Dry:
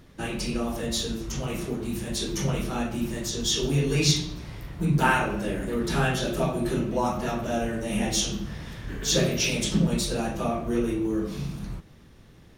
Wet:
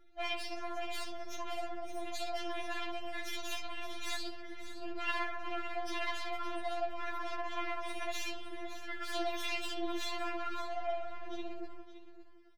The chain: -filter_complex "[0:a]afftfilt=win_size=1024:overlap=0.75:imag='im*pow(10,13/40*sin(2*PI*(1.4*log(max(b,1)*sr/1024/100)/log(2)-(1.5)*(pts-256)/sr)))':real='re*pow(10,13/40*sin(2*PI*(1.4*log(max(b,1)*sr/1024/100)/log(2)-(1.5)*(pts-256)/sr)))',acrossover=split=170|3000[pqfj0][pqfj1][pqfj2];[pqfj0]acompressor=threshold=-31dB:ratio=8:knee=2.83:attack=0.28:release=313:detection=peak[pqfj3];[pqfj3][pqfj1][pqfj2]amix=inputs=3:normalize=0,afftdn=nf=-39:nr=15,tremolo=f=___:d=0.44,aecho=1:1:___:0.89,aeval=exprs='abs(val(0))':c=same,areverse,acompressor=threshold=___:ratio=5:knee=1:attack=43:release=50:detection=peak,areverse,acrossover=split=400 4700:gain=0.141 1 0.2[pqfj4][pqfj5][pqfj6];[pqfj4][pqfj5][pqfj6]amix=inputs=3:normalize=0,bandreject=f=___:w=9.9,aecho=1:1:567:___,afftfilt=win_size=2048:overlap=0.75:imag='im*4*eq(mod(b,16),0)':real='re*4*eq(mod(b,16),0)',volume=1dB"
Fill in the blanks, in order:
16, 5.8, -35dB, 1100, 0.237